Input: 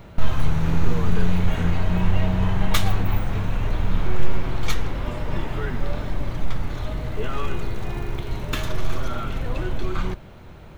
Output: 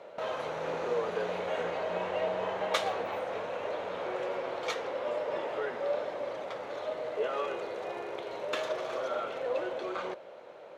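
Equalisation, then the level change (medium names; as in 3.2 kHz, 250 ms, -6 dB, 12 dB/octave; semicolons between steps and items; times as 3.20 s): resonant high-pass 530 Hz, resonance Q 4.5; distance through air 62 m; -5.5 dB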